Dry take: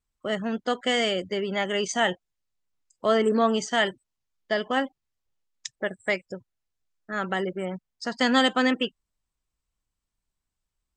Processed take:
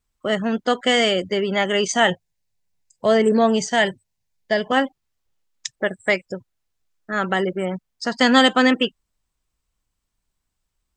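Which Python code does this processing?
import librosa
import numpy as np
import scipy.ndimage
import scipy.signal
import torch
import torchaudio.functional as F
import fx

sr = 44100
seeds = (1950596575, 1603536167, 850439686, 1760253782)

y = fx.graphic_eq_31(x, sr, hz=(100, 160, 315, 1250, 3150), db=(7, 6, -10, -12, -4), at=(2.1, 4.72))
y = y * librosa.db_to_amplitude(6.5)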